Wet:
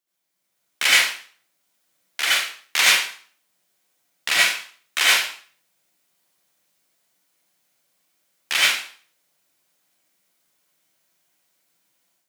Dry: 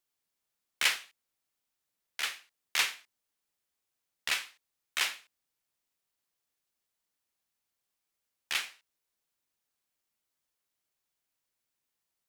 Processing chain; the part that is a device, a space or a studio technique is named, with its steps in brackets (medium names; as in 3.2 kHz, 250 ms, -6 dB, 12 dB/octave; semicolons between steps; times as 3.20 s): far laptop microphone (reverberation RT60 0.45 s, pre-delay 68 ms, DRR -6.5 dB; high-pass 140 Hz 24 dB/octave; level rider gain up to 9 dB)